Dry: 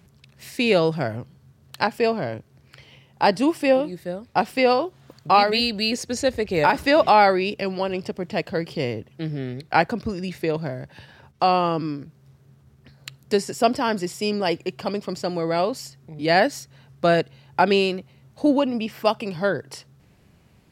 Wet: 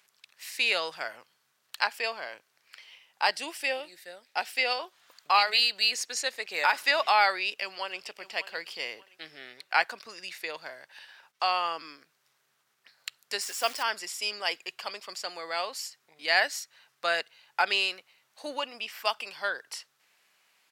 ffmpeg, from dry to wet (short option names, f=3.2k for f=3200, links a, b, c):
-filter_complex "[0:a]asettb=1/sr,asplit=3[a][b][c];[a]atrim=end=3.314[d];[b]atrim=start=3.31:end=4.8,asetpts=PTS-STARTPTS,afade=t=in:d=0.004:c=qsin,afade=t=out:st=1.486:d=0.004:c=qsin,equalizer=f=1.1k:w=3.4:g=-9.5[e];[c]atrim=start=4.796[f];[d][e]acrossfade=d=0.004:c1=hsin:c2=qsin[g];[g][f]acrossfade=d=0.004:c1=qsin:c2=hsin,asplit=2[h][i];[i]afade=t=in:st=7.47:d=0.01,afade=t=out:st=7.99:d=0.01,aecho=0:1:590|1180|1770:0.188365|0.0565095|0.0169528[j];[h][j]amix=inputs=2:normalize=0,asettb=1/sr,asplit=3[k][l][m];[k]atrim=end=13.414[n];[l]atrim=start=13.41:end=13.83,asetpts=PTS-STARTPTS,afade=t=in:d=0.004:c=qsin,afade=t=out:st=0.416:d=0.004:c=qsin,acrusher=bits=7:dc=4:mix=0:aa=0.000001[o];[m]atrim=start=13.826[p];[n][o]acrossfade=d=0.004:c1=hsin:c2=qsin[q];[q][p]acrossfade=d=0.004:c1=qsin:c2=hsin,highpass=1.3k"